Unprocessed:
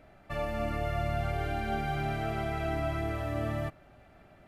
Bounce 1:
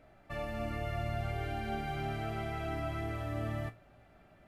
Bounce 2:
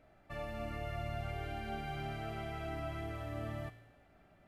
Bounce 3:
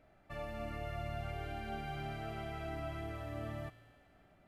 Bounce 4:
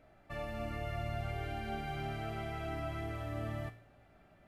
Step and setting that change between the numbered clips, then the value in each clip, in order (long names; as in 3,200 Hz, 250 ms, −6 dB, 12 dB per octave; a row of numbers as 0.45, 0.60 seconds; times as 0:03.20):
tuned comb filter, decay: 0.22, 1, 2.2, 0.5 seconds